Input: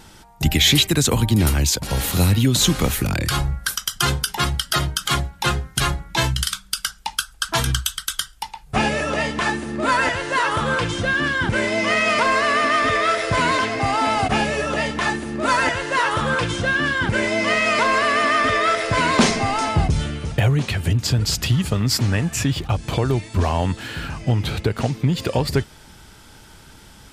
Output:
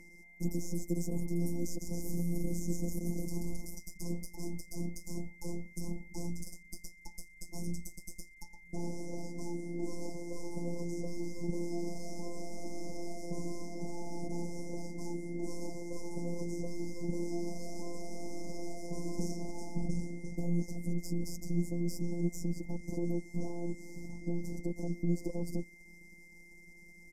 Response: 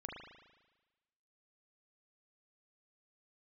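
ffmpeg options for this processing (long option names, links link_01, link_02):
-filter_complex "[0:a]asettb=1/sr,asplit=3[link_01][link_02][link_03];[link_01]atrim=end=1.554[link_04];[link_02]atrim=start=1.55:end=3.79,asetpts=PTS-STARTPTS,afade=type=in:duration=0.004:curve=qsin,afade=type=out:start_time=2.236:duration=0.004:curve=qsin,asplit=9[link_05][link_06][link_07][link_08][link_09][link_10][link_11][link_12][link_13];[link_06]adelay=133,afreqshift=-66,volume=-6dB[link_14];[link_07]adelay=266,afreqshift=-132,volume=-10.4dB[link_15];[link_08]adelay=399,afreqshift=-198,volume=-14.9dB[link_16];[link_09]adelay=532,afreqshift=-264,volume=-19.3dB[link_17];[link_10]adelay=665,afreqshift=-330,volume=-23.7dB[link_18];[link_11]adelay=798,afreqshift=-396,volume=-28.2dB[link_19];[link_12]adelay=931,afreqshift=-462,volume=-32.6dB[link_20];[link_13]adelay=1064,afreqshift=-528,volume=-37.1dB[link_21];[link_05][link_14][link_15][link_16][link_17][link_18][link_19][link_20][link_21]amix=inputs=9:normalize=0,atrim=end_sample=98784[link_22];[link_03]atrim=start=3.786[link_23];[link_04][link_22]acrossfade=duration=0.004:curve1=hsin:curve2=qsin[link_24];[link_24][link_23]acrossfade=duration=0.004:curve1=qsin:curve2=hsin,alimiter=limit=-12dB:level=0:latency=1:release=11,aeval=exprs='max(val(0),0)':channel_layout=same,afftfilt=real='hypot(re,im)*cos(PI*b)':imag='0':win_size=1024:overlap=0.75,asuperstop=centerf=2300:order=20:qfactor=0.54,highshelf=frequency=3100:gain=6.5,aeval=exprs='val(0)+0.0282*sin(2*PI*2100*n/s)':channel_layout=same,acrossover=split=460[link_25][link_26];[link_26]acompressor=threshold=-52dB:ratio=2[link_27];[link_25][link_27]amix=inputs=2:normalize=0,equalizer=frequency=125:width_type=o:width=1:gain=-7,equalizer=frequency=250:width_type=o:width=1:gain=11,equalizer=frequency=1000:width_type=o:width=1:gain=-5,equalizer=frequency=2000:width_type=o:width=1:gain=-10,equalizer=frequency=4000:width_type=o:width=1:gain=8,aresample=32000,aresample=44100,volume=-6dB"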